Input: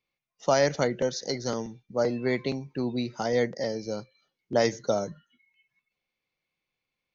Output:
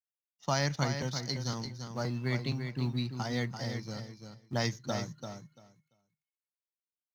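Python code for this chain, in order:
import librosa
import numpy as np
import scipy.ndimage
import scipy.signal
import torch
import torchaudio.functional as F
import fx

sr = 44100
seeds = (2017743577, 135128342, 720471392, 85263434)

p1 = fx.law_mismatch(x, sr, coded='A')
p2 = fx.graphic_eq(p1, sr, hz=(125, 500, 1000, 4000), db=(11, -11, 4, 5))
p3 = p2 + fx.echo_feedback(p2, sr, ms=341, feedback_pct=16, wet_db=-7.5, dry=0)
y = F.gain(torch.from_numpy(p3), -5.5).numpy()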